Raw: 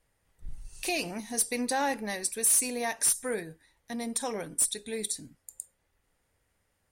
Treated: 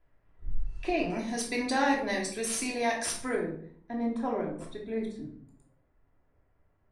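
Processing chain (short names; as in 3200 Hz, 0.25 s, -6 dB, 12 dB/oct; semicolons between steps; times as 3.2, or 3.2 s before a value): LPF 1800 Hz 12 dB/oct, from 1.1 s 4800 Hz, from 3.35 s 1300 Hz; reverb RT60 0.55 s, pre-delay 3 ms, DRR -1.5 dB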